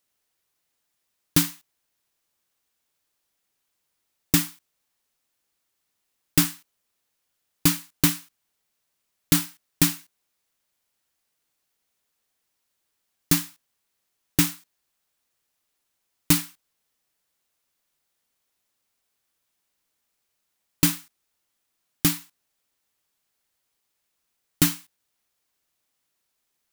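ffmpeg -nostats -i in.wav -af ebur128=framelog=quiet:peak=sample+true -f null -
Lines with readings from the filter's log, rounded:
Integrated loudness:
  I:         -23.4 LUFS
  Threshold: -34.8 LUFS
Loudness range:
  LRA:         5.0 LU
  Threshold: -49.7 LUFS
  LRA low:   -31.9 LUFS
  LRA high:  -26.8 LUFS
Sample peak:
  Peak:       -3.3 dBFS
True peak:
  Peak:       -2.2 dBFS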